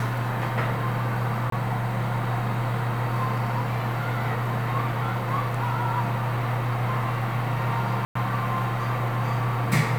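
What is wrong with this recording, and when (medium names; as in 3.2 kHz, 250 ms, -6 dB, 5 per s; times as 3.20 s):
1.50–1.52 s: dropout 23 ms
8.05–8.15 s: dropout 104 ms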